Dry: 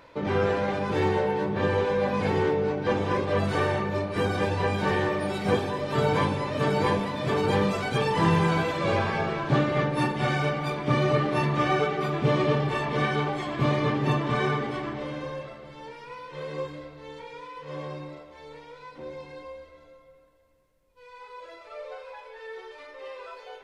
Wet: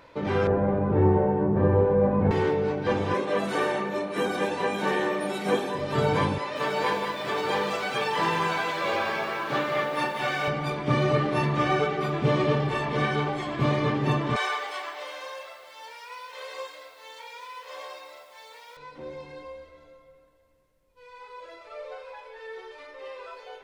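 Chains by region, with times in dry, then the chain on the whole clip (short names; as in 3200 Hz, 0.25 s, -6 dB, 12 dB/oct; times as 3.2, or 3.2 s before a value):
0.47–2.31 LPF 1200 Hz + tilt -2 dB/oct + flutter echo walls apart 8.7 m, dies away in 0.3 s
3.14–5.75 HPF 190 Hz 24 dB/oct + high shelf 8800 Hz +7.5 dB + notch 4800 Hz, Q 7.6
6.38–10.48 weighting filter A + lo-fi delay 0.18 s, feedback 35%, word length 8-bit, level -7 dB
14.36–18.77 HPF 590 Hz 24 dB/oct + high shelf 3500 Hz +10.5 dB + requantised 10-bit, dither none
whole clip: dry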